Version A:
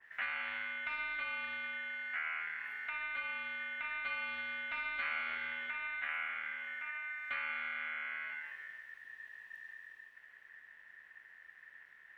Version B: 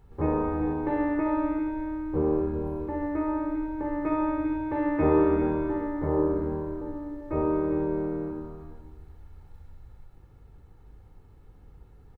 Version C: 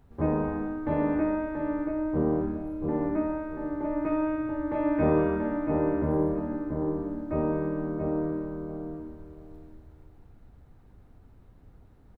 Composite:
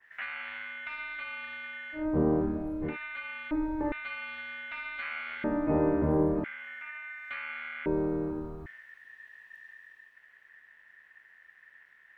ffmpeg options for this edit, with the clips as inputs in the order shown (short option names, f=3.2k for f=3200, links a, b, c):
-filter_complex "[2:a]asplit=2[a][b];[1:a]asplit=2[c][d];[0:a]asplit=5[e][f][g][h][i];[e]atrim=end=2.08[j];[a]atrim=start=1.92:end=2.97[k];[f]atrim=start=2.81:end=3.512[l];[c]atrim=start=3.508:end=3.922[m];[g]atrim=start=3.918:end=5.442[n];[b]atrim=start=5.438:end=6.442[o];[h]atrim=start=6.438:end=7.862[p];[d]atrim=start=7.858:end=8.662[q];[i]atrim=start=8.658[r];[j][k]acrossfade=d=0.16:c1=tri:c2=tri[s];[s][l]acrossfade=d=0.16:c1=tri:c2=tri[t];[t][m]acrossfade=d=0.004:c1=hsin:c2=hsin[u];[u][n]acrossfade=d=0.004:c1=hsin:c2=hsin[v];[v][o]acrossfade=d=0.004:c1=hsin:c2=hsin[w];[w][p]acrossfade=d=0.004:c1=hsin:c2=hsin[x];[x][q]acrossfade=d=0.004:c1=hsin:c2=hsin[y];[y][r]acrossfade=d=0.004:c1=hsin:c2=hsin"